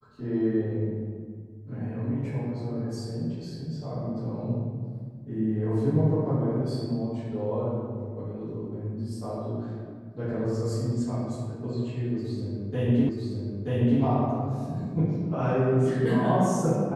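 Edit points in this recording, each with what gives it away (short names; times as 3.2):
13.09 repeat of the last 0.93 s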